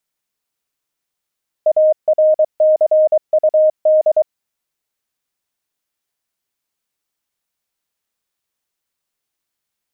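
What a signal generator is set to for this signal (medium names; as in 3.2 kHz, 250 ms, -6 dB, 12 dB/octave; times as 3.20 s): Morse "ARCUD" 23 wpm 621 Hz -8 dBFS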